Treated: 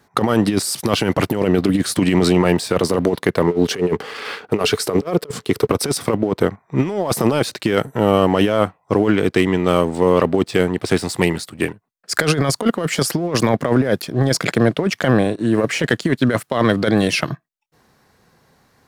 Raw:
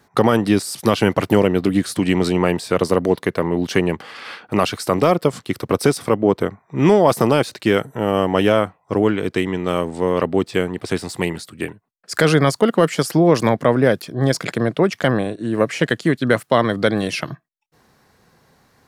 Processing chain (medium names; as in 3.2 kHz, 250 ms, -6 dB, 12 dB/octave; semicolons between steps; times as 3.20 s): 3.47–5.67 s: peaking EQ 430 Hz +13 dB 0.26 oct; compressor with a negative ratio -17 dBFS, ratio -0.5; waveshaping leveller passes 1; trim -1 dB